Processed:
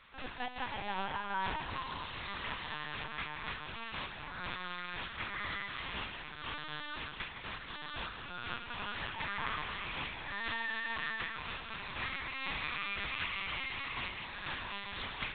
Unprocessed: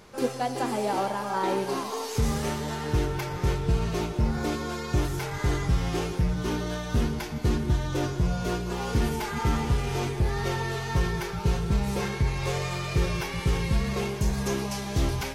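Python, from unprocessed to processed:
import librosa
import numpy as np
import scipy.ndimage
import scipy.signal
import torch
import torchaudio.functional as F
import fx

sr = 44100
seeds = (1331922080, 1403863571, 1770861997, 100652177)

y = scipy.signal.sosfilt(scipy.signal.butter(2, 1400.0, 'highpass', fs=sr, output='sos'), x)
y = y + 10.0 ** (-9.5 / 20.0) * np.pad(y, (int(163 * sr / 1000.0), 0))[:len(y)]
y = fx.lpc_vocoder(y, sr, seeds[0], excitation='pitch_kept', order=8)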